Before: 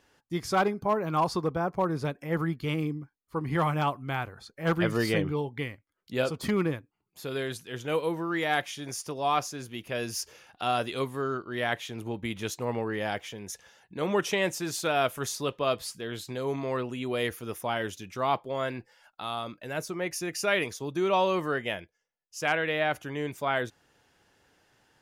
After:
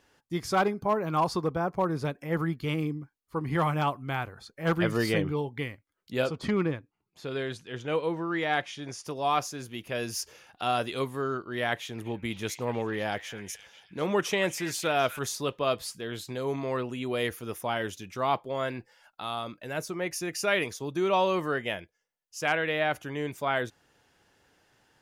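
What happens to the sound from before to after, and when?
0:06.27–0:09.05: high-frequency loss of the air 75 metres
0:11.74–0:15.19: echo through a band-pass that steps 247 ms, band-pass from 1,900 Hz, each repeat 0.7 octaves, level −9 dB

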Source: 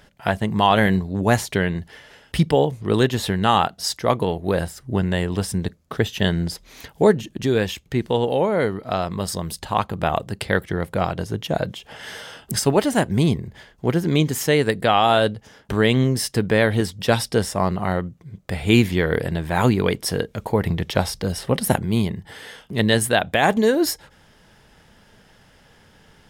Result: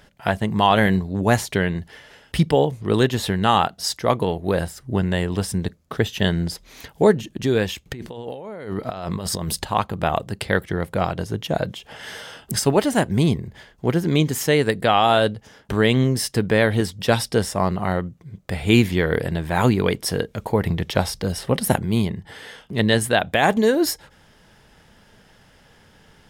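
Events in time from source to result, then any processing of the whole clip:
0:07.86–0:09.64: compressor whose output falls as the input rises −30 dBFS
0:22.05–0:23.19: high-shelf EQ 9,200 Hz −6 dB

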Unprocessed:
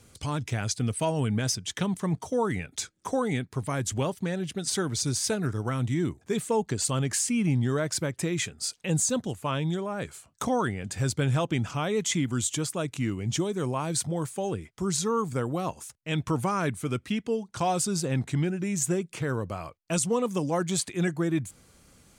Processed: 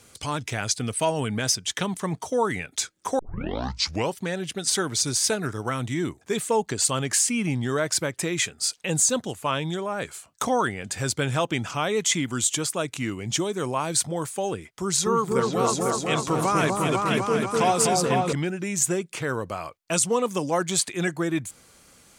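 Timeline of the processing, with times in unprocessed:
0:03.19: tape start 0.97 s
0:14.67–0:18.33: echo whose low-pass opens from repeat to repeat 249 ms, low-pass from 750 Hz, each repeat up 2 octaves, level 0 dB
whole clip: low-shelf EQ 280 Hz −11 dB; level +6 dB

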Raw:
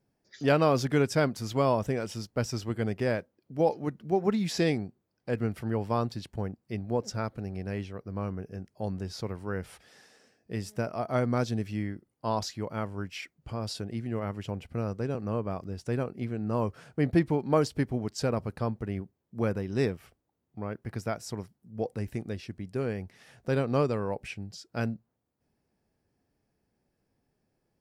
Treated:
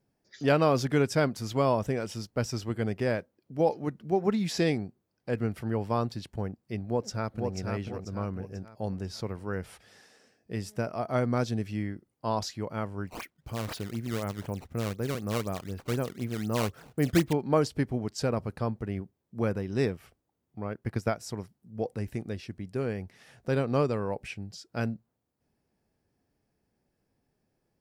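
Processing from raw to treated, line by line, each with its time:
0:06.85–0:07.55: delay throw 490 ms, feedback 40%, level −4 dB
0:13.07–0:17.33: sample-and-hold swept by an LFO 15×, swing 160% 4 Hz
0:20.64–0:21.21: transient designer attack +6 dB, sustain −3 dB

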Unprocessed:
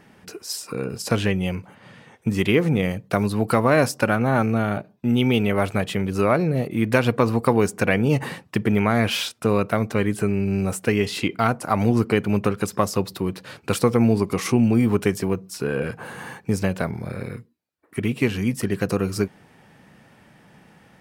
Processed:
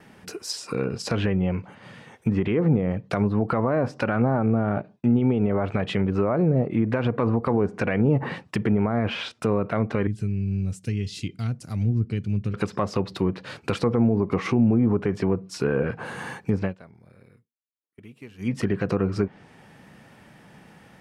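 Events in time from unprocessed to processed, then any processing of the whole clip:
0:10.07–0:12.54: drawn EQ curve 110 Hz 0 dB, 940 Hz −28 dB, 6,000 Hz −3 dB
0:16.57–0:18.57: duck −23.5 dB, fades 0.19 s
whole clip: brickwall limiter −12.5 dBFS; treble cut that deepens with the level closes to 1,000 Hz, closed at −18.5 dBFS; noise gate with hold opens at −46 dBFS; level +1.5 dB

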